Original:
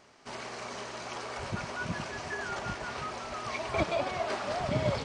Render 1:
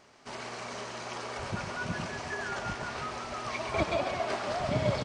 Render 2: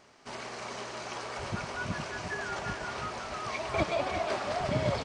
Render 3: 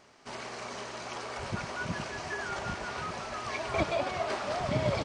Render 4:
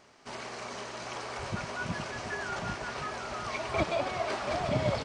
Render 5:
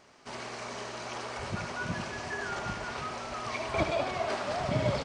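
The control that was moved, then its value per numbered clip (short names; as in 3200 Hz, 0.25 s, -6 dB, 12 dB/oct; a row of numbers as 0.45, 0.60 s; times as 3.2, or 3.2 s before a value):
echo, time: 133, 352, 1189, 732, 75 ms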